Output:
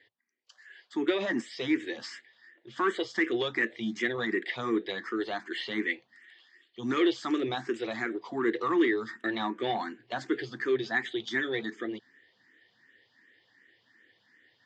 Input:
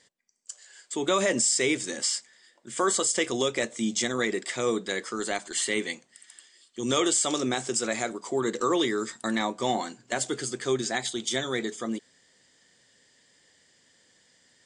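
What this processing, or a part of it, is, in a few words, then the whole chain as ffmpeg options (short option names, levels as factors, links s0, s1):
barber-pole phaser into a guitar amplifier: -filter_complex "[0:a]asplit=2[s0][s1];[s1]afreqshift=2.7[s2];[s0][s2]amix=inputs=2:normalize=1,asoftclip=type=tanh:threshold=0.1,highpass=93,equalizer=f=110:t=q:w=4:g=4,equalizer=f=160:t=q:w=4:g=-9,equalizer=f=330:t=q:w=4:g=7,equalizer=f=580:t=q:w=4:g=-6,equalizer=f=1800:t=q:w=4:g=9,lowpass=f=3900:w=0.5412,lowpass=f=3900:w=1.3066"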